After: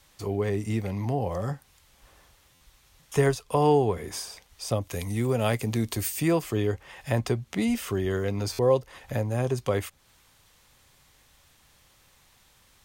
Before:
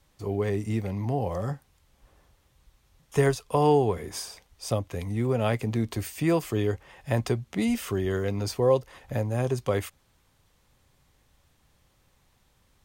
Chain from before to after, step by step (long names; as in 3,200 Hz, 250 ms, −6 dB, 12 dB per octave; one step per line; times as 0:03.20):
0:04.81–0:06.28: high-shelf EQ 4,800 Hz +11 dB
buffer that repeats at 0:02.54/0:08.52, samples 512, times 5
one half of a high-frequency compander encoder only